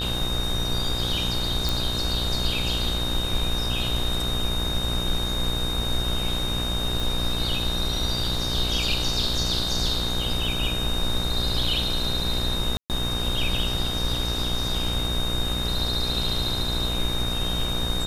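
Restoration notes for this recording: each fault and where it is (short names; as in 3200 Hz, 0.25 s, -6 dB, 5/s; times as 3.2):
buzz 60 Hz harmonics 28 -30 dBFS
tone 3700 Hz -28 dBFS
1.69 pop
7 pop
12.77–12.9 gap 0.128 s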